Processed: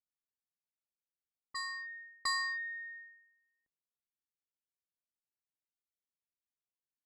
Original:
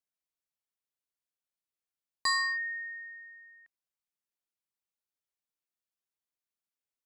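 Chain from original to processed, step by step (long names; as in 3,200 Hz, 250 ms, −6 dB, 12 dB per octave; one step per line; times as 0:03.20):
backwards echo 709 ms −6.5 dB
low-pass that shuts in the quiet parts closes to 320 Hz, open at −33.5 dBFS
harmonic generator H 2 −26 dB, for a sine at −22 dBFS
level −5 dB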